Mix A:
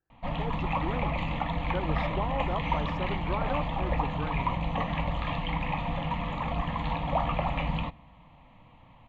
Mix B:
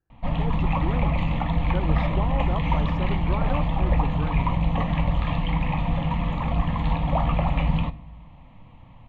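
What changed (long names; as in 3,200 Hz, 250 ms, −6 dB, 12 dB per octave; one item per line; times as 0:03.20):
background: send +9.0 dB
master: add low-shelf EQ 230 Hz +9.5 dB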